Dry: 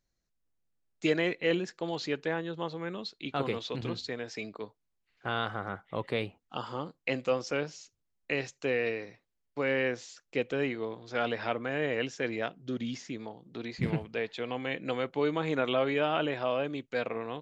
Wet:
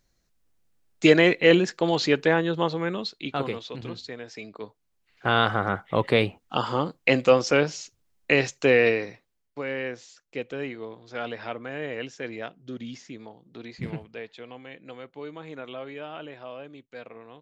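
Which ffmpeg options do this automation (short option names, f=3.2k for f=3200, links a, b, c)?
-af "volume=23dB,afade=t=out:st=2.57:d=1.06:silence=0.251189,afade=t=in:st=4.47:d=0.93:silence=0.251189,afade=t=out:st=8.86:d=0.77:silence=0.223872,afade=t=out:st=13.71:d=0.99:silence=0.421697"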